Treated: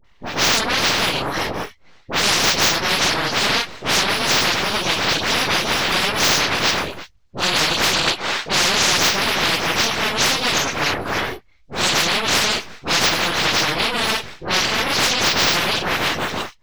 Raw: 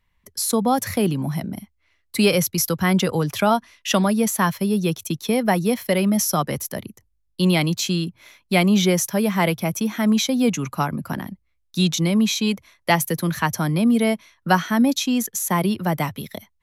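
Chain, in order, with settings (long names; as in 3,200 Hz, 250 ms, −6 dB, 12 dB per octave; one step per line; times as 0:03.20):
random phases in long frames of 100 ms
bass and treble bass −3 dB, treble +15 dB
full-wave rectification
0:08.03–0:08.93: mid-hump overdrive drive 21 dB, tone 5,700 Hz, clips at −9.5 dBFS
high-frequency loss of the air 200 metres
all-pass dispersion highs, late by 47 ms, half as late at 1,100 Hz
every bin compressed towards the loudest bin 10 to 1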